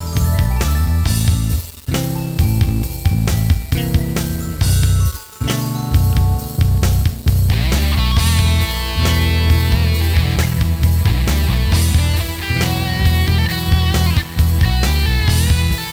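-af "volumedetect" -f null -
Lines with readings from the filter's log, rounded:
mean_volume: -14.7 dB
max_volume: -3.5 dB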